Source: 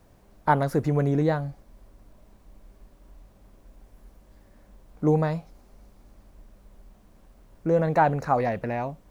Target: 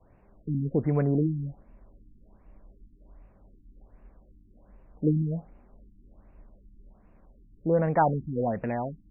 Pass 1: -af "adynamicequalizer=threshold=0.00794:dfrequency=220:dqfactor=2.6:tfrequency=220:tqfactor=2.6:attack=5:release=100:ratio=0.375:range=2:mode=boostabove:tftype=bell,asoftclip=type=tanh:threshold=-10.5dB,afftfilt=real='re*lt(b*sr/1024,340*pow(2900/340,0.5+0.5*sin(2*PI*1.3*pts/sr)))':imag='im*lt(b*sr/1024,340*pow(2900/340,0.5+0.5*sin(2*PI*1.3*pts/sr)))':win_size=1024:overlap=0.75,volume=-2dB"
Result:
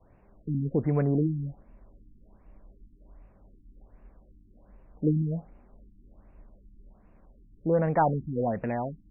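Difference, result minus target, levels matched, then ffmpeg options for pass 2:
soft clip: distortion +11 dB
-af "adynamicequalizer=threshold=0.00794:dfrequency=220:dqfactor=2.6:tfrequency=220:tqfactor=2.6:attack=5:release=100:ratio=0.375:range=2:mode=boostabove:tftype=bell,asoftclip=type=tanh:threshold=-4dB,afftfilt=real='re*lt(b*sr/1024,340*pow(2900/340,0.5+0.5*sin(2*PI*1.3*pts/sr)))':imag='im*lt(b*sr/1024,340*pow(2900/340,0.5+0.5*sin(2*PI*1.3*pts/sr)))':win_size=1024:overlap=0.75,volume=-2dB"

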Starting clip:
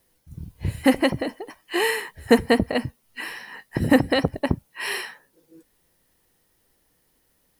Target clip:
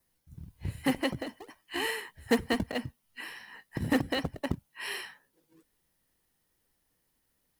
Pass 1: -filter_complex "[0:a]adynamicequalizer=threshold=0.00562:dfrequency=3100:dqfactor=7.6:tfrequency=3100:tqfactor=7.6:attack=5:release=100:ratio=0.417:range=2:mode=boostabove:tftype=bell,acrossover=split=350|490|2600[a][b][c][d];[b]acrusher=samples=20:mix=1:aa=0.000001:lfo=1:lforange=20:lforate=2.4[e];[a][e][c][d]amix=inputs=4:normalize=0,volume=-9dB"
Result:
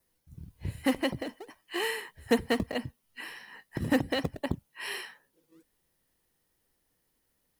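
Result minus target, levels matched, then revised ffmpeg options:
decimation with a swept rate: distortion -15 dB
-filter_complex "[0:a]adynamicequalizer=threshold=0.00562:dfrequency=3100:dqfactor=7.6:tfrequency=3100:tqfactor=7.6:attack=5:release=100:ratio=0.417:range=2:mode=boostabove:tftype=bell,acrossover=split=350|490|2600[a][b][c][d];[b]acrusher=samples=47:mix=1:aa=0.000001:lfo=1:lforange=47:lforate=2.4[e];[a][e][c][d]amix=inputs=4:normalize=0,volume=-9dB"

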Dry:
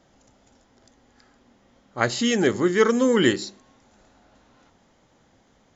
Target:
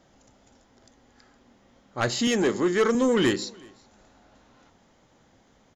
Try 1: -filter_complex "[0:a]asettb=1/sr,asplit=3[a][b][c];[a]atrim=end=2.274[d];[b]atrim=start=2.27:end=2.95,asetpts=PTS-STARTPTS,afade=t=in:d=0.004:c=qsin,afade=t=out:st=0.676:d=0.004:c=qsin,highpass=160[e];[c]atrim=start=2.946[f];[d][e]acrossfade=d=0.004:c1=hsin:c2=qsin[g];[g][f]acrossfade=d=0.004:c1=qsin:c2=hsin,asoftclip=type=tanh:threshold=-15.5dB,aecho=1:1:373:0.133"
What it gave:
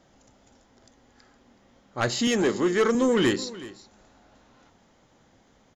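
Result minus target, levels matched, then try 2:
echo-to-direct +9 dB
-filter_complex "[0:a]asettb=1/sr,asplit=3[a][b][c];[a]atrim=end=2.274[d];[b]atrim=start=2.27:end=2.95,asetpts=PTS-STARTPTS,afade=t=in:d=0.004:c=qsin,afade=t=out:st=0.676:d=0.004:c=qsin,highpass=160[e];[c]atrim=start=2.946[f];[d][e]acrossfade=d=0.004:c1=hsin:c2=qsin[g];[g][f]acrossfade=d=0.004:c1=qsin:c2=hsin,asoftclip=type=tanh:threshold=-15.5dB,aecho=1:1:373:0.0473"

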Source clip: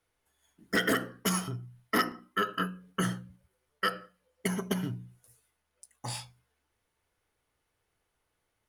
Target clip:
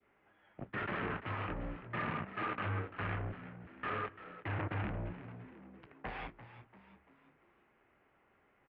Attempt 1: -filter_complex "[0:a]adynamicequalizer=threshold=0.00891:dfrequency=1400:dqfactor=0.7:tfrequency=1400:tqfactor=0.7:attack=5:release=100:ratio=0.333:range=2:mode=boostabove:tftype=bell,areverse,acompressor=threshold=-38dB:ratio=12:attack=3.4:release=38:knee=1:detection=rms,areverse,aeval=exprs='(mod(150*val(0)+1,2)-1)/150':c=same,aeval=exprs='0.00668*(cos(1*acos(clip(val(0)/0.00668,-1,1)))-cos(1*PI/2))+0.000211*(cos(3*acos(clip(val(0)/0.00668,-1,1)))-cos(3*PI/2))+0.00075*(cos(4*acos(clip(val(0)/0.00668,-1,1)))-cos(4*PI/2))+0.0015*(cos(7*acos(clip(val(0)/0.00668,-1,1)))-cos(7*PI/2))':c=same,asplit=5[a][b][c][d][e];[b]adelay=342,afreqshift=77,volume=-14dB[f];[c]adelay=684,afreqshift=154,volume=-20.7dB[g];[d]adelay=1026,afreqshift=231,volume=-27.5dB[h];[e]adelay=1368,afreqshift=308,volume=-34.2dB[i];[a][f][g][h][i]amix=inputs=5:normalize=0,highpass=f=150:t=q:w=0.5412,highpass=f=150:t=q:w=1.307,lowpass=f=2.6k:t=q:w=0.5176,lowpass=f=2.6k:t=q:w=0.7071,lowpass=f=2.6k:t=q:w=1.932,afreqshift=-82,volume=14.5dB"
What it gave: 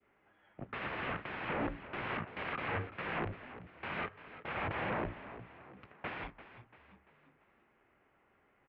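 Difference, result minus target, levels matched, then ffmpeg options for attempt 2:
compressor: peak gain reduction -9 dB
-filter_complex "[0:a]adynamicequalizer=threshold=0.00891:dfrequency=1400:dqfactor=0.7:tfrequency=1400:tqfactor=0.7:attack=5:release=100:ratio=0.333:range=2:mode=boostabove:tftype=bell,areverse,acompressor=threshold=-48dB:ratio=12:attack=3.4:release=38:knee=1:detection=rms,areverse,aeval=exprs='(mod(150*val(0)+1,2)-1)/150':c=same,aeval=exprs='0.00668*(cos(1*acos(clip(val(0)/0.00668,-1,1)))-cos(1*PI/2))+0.000211*(cos(3*acos(clip(val(0)/0.00668,-1,1)))-cos(3*PI/2))+0.00075*(cos(4*acos(clip(val(0)/0.00668,-1,1)))-cos(4*PI/2))+0.0015*(cos(7*acos(clip(val(0)/0.00668,-1,1)))-cos(7*PI/2))':c=same,asplit=5[a][b][c][d][e];[b]adelay=342,afreqshift=77,volume=-14dB[f];[c]adelay=684,afreqshift=154,volume=-20.7dB[g];[d]adelay=1026,afreqshift=231,volume=-27.5dB[h];[e]adelay=1368,afreqshift=308,volume=-34.2dB[i];[a][f][g][h][i]amix=inputs=5:normalize=0,highpass=f=150:t=q:w=0.5412,highpass=f=150:t=q:w=1.307,lowpass=f=2.6k:t=q:w=0.5176,lowpass=f=2.6k:t=q:w=0.7071,lowpass=f=2.6k:t=q:w=1.932,afreqshift=-82,volume=14.5dB"

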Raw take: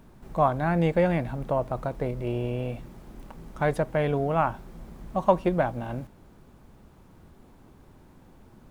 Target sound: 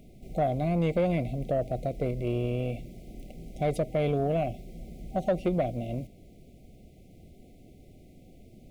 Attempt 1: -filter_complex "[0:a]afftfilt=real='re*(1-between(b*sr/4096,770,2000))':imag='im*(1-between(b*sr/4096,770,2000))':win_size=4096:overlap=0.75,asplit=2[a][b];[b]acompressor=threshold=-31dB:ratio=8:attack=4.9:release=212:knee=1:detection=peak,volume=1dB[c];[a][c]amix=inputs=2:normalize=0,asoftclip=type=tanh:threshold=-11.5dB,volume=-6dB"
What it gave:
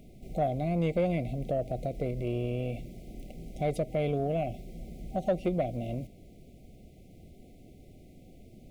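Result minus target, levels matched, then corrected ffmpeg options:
compressor: peak gain reduction +8.5 dB
-filter_complex "[0:a]afftfilt=real='re*(1-between(b*sr/4096,770,2000))':imag='im*(1-between(b*sr/4096,770,2000))':win_size=4096:overlap=0.75,asplit=2[a][b];[b]acompressor=threshold=-21.5dB:ratio=8:attack=4.9:release=212:knee=1:detection=peak,volume=1dB[c];[a][c]amix=inputs=2:normalize=0,asoftclip=type=tanh:threshold=-11.5dB,volume=-6dB"

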